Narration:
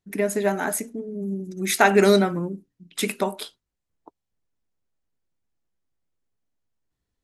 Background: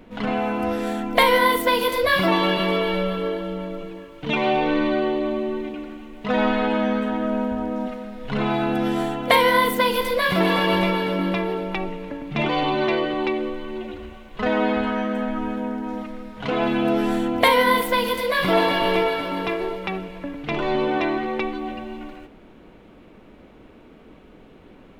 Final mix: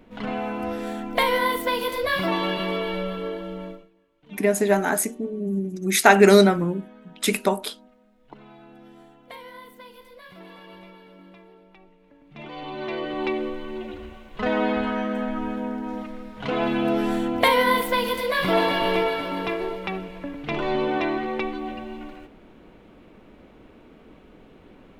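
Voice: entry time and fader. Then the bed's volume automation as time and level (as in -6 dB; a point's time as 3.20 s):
4.25 s, +3.0 dB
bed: 3.70 s -5 dB
3.91 s -25.5 dB
11.96 s -25.5 dB
13.29 s -2 dB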